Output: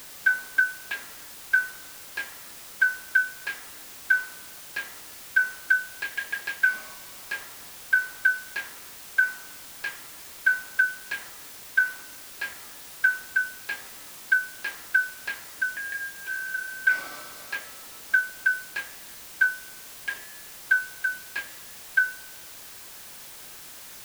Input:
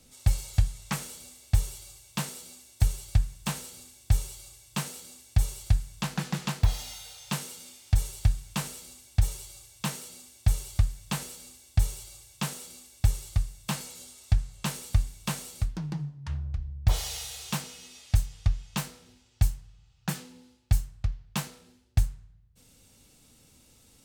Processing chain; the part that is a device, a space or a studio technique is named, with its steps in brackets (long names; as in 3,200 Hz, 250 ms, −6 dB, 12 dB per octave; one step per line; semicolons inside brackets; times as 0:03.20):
split-band scrambled radio (band-splitting scrambler in four parts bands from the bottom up 4123; band-pass filter 330–2,800 Hz; white noise bed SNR 14 dB)